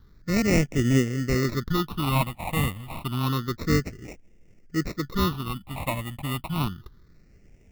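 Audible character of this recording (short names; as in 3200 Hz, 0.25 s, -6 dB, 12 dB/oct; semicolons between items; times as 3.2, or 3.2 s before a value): aliases and images of a low sample rate 1600 Hz, jitter 0%; phasing stages 6, 0.29 Hz, lowest notch 390–1100 Hz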